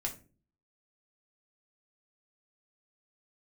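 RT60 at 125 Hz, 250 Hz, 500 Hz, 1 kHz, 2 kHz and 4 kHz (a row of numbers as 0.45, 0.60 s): 0.65, 0.60, 0.45, 0.30, 0.30, 0.25 s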